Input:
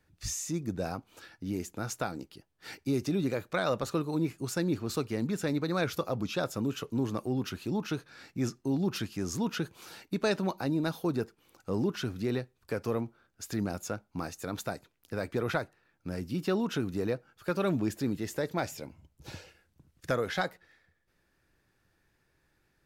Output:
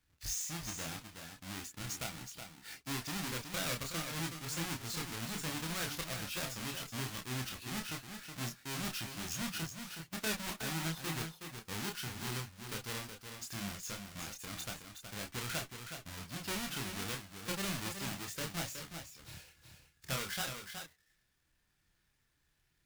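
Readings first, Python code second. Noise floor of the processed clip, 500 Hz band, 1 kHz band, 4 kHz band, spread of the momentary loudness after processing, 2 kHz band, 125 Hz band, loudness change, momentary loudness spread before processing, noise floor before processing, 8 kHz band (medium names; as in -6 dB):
-77 dBFS, -14.5 dB, -6.5 dB, +2.0 dB, 9 LU, -2.0 dB, -7.5 dB, -6.5 dB, 12 LU, -74 dBFS, +2.0 dB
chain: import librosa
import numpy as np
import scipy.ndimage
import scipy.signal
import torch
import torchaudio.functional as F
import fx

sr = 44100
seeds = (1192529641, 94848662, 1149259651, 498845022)

p1 = fx.halfwave_hold(x, sr)
p2 = fx.tone_stack(p1, sr, knobs='5-5-5')
p3 = fx.chorus_voices(p2, sr, voices=6, hz=0.19, base_ms=28, depth_ms=3.9, mix_pct=40)
p4 = p3 + fx.echo_single(p3, sr, ms=370, db=-7.5, dry=0)
y = p4 * librosa.db_to_amplitude(4.5)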